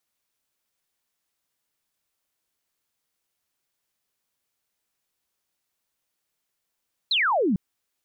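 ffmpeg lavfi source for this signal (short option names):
-f lavfi -i "aevalsrc='0.112*clip(t/0.002,0,1)*clip((0.45-t)/0.002,0,1)*sin(2*PI*4300*0.45/log(170/4300)*(exp(log(170/4300)*t/0.45)-1))':d=0.45:s=44100"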